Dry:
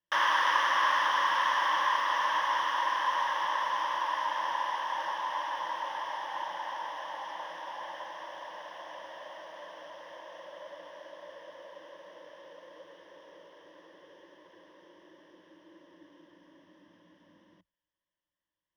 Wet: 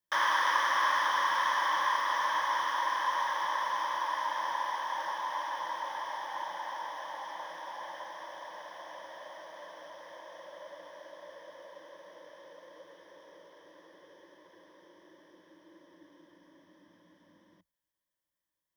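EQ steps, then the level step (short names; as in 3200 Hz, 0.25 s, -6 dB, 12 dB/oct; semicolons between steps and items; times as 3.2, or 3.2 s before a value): high shelf 7300 Hz +8.5 dB; notch 2800 Hz, Q 5.2; -1.5 dB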